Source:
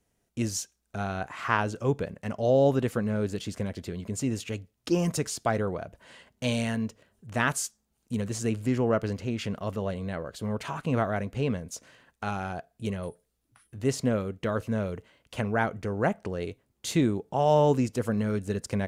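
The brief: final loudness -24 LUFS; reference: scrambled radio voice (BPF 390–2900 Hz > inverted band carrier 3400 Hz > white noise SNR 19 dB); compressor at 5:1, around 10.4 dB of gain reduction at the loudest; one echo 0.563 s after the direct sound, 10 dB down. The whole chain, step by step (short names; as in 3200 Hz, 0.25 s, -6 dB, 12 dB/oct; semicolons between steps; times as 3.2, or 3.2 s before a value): compressor 5:1, threshold -29 dBFS; BPF 390–2900 Hz; echo 0.563 s -10 dB; inverted band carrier 3400 Hz; white noise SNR 19 dB; gain +12 dB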